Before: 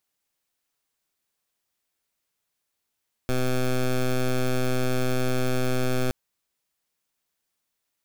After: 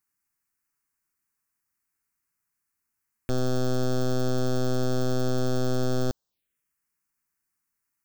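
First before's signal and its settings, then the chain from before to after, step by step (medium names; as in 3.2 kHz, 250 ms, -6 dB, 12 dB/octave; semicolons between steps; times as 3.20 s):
pulse 127 Hz, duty 13% -23 dBFS 2.82 s
touch-sensitive phaser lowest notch 600 Hz, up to 2.3 kHz, full sweep at -33.5 dBFS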